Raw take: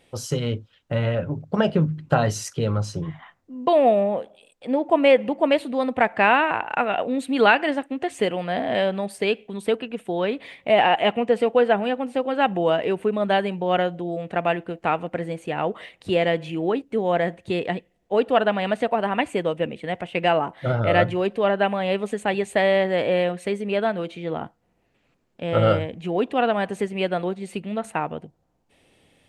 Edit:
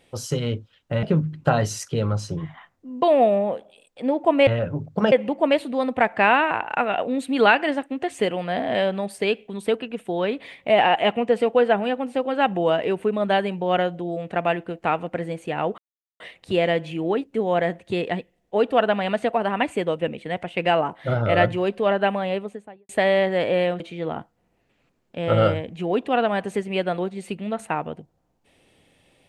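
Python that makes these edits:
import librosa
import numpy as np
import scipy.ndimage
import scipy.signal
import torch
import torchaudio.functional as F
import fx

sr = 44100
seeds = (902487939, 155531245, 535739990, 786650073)

y = fx.studio_fade_out(x, sr, start_s=21.67, length_s=0.8)
y = fx.edit(y, sr, fx.move(start_s=1.03, length_s=0.65, to_s=5.12),
    fx.insert_silence(at_s=15.78, length_s=0.42),
    fx.cut(start_s=23.38, length_s=0.67), tone=tone)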